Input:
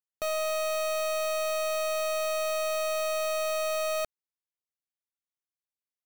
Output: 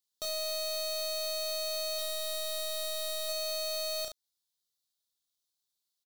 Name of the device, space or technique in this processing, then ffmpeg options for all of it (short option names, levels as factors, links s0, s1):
over-bright horn tweeter: -filter_complex "[0:a]asettb=1/sr,asplit=3[s0][s1][s2];[s0]atrim=end=1.954[s3];[s1]atrim=start=1.95:end=3.29,asetpts=PTS-STARTPTS,afade=t=in:d=0.004:c=qsin,afade=t=out:st=1.336:d=0.004:c=qsin,asplit=2[s4][s5];[s5]adelay=34,volume=0.596[s6];[s4][s6]amix=inputs=2:normalize=0,atrim=end_sample=59094[s7];[s2]atrim=start=3.286[s8];[s3][s7]acrossfade=d=0.004:c1=hsin:c2=qsin[s9];[s9][s8]acrossfade=d=0.004:c1=qsin:c2=hsin,highshelf=f=3000:t=q:w=3:g=8.5,aecho=1:1:33|70:0.596|0.282,alimiter=level_in=1.19:limit=0.0631:level=0:latency=1:release=228,volume=0.841"